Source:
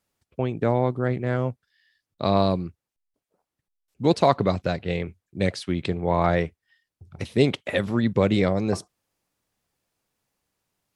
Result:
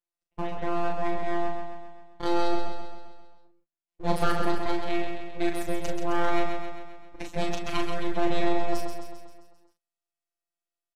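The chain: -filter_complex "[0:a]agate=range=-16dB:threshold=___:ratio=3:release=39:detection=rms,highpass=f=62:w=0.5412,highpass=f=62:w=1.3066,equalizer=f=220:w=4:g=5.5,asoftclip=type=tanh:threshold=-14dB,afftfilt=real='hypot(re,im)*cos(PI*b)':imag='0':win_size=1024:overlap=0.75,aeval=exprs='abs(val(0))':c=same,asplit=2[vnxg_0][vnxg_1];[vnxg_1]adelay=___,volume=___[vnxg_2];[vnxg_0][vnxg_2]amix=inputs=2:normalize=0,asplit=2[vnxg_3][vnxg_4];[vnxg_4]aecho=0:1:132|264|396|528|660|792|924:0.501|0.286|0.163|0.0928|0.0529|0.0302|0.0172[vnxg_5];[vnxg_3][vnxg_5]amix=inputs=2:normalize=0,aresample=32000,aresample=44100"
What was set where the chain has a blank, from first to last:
-43dB, 38, -5dB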